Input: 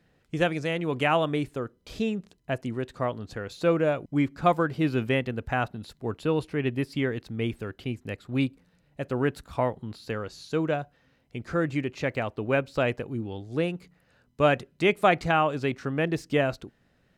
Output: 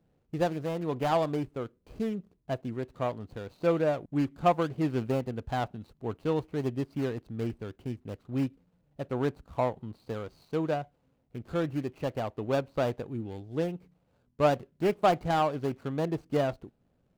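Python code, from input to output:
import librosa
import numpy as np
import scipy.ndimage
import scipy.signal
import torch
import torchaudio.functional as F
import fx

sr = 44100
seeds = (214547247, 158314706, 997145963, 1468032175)

y = scipy.ndimage.median_filter(x, 25, mode='constant')
y = fx.dynamic_eq(y, sr, hz=770.0, q=1.6, threshold_db=-38.0, ratio=4.0, max_db=4)
y = y * librosa.db_to_amplitude(-3.5)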